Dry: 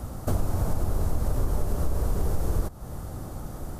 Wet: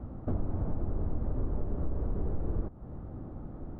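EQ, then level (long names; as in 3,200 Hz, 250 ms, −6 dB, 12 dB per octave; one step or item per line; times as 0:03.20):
high-frequency loss of the air 470 metres
head-to-tape spacing loss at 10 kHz 26 dB
parametric band 280 Hz +6.5 dB 1.2 octaves
−6.5 dB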